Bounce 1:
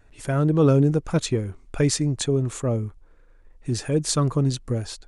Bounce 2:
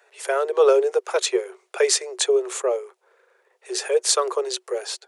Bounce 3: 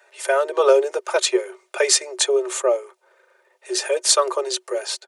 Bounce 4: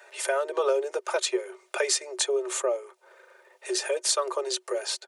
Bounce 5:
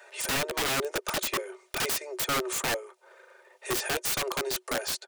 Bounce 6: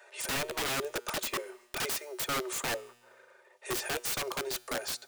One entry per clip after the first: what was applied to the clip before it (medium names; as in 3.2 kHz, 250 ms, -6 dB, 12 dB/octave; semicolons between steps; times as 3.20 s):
Chebyshev high-pass 370 Hz, order 10; trim +6.5 dB
comb 3.3 ms, depth 65%; trim +2 dB
compression 2:1, threshold -36 dBFS, peak gain reduction 14.5 dB; trim +3.5 dB
integer overflow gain 23 dB
feedback comb 120 Hz, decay 1.3 s, harmonics all, mix 40%